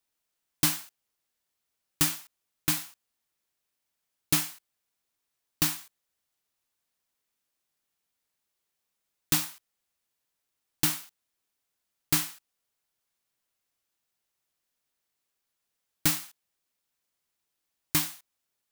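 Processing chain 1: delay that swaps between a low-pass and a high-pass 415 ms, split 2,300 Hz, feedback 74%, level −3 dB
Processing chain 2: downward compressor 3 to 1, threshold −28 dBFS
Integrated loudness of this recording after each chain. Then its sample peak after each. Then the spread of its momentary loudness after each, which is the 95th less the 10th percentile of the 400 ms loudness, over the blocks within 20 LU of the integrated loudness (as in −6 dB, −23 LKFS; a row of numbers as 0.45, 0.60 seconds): −31.5, −34.0 LKFS; −8.5, −10.5 dBFS; 19, 15 LU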